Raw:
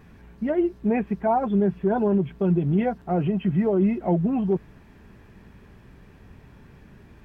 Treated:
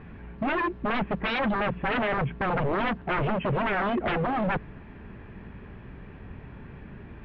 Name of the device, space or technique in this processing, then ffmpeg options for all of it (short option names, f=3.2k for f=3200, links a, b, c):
synthesiser wavefolder: -af "aeval=exprs='0.0473*(abs(mod(val(0)/0.0473+3,4)-2)-1)':c=same,lowpass=f=3k:w=0.5412,lowpass=f=3k:w=1.3066,volume=5.5dB"